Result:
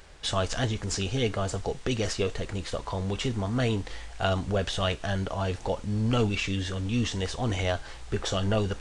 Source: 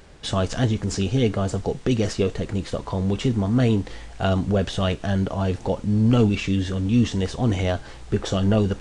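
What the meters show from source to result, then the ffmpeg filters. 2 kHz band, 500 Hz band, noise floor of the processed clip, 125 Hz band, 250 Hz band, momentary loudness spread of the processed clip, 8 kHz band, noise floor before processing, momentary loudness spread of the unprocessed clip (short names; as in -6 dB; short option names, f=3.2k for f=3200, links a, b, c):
-0.5 dB, -5.0 dB, -42 dBFS, -7.0 dB, -9.5 dB, 6 LU, 0.0 dB, -41 dBFS, 7 LU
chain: -af "equalizer=f=200:w=0.49:g=-10"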